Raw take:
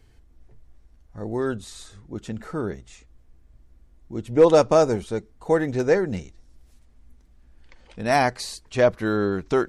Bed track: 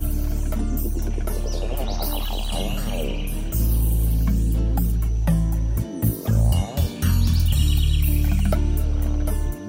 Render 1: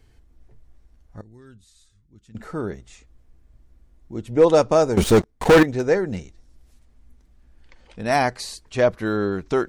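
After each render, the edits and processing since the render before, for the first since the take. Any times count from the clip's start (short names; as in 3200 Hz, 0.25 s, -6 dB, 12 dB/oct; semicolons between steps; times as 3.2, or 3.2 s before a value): 1.21–2.35 passive tone stack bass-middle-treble 6-0-2; 4.97–5.63 sample leveller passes 5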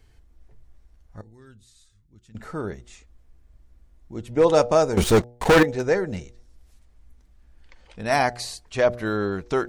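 bell 270 Hz -3.5 dB 1.6 oct; de-hum 120.5 Hz, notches 7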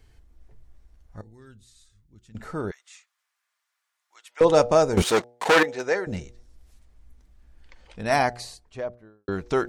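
2.71–4.41 HPF 1100 Hz 24 dB/oct; 5.02–6.07 weighting filter A; 8.02–9.28 studio fade out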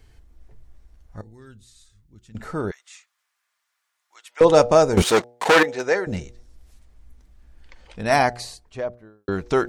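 gain +3.5 dB; limiter -2 dBFS, peak gain reduction 1 dB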